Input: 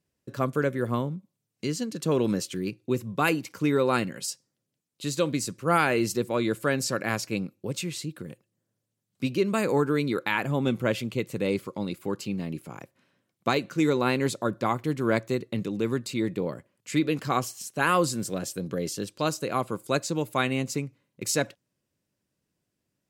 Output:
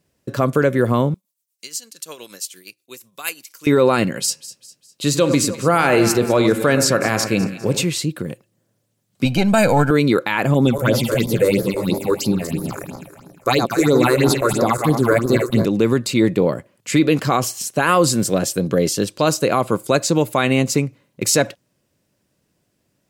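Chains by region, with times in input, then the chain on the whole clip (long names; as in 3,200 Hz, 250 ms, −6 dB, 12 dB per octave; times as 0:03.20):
0:01.14–0:03.67: first difference + shaped tremolo triangle 8.5 Hz, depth 70%
0:04.20–0:07.85: hum removal 78.5 Hz, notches 37 + delay that swaps between a low-pass and a high-pass 101 ms, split 1,700 Hz, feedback 66%, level −11.5 dB
0:09.25–0:09.91: gain on one half-wave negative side −3 dB + comb filter 1.3 ms, depth 74%
0:10.54–0:15.65: feedback delay that plays each chunk backwards 121 ms, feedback 65%, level −7.5 dB + high-shelf EQ 6,400 Hz +10 dB + all-pass phaser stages 6, 3 Hz, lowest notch 190–2,800 Hz
whole clip: parametric band 630 Hz +3 dB 0.77 octaves; boost into a limiter +16 dB; level −4 dB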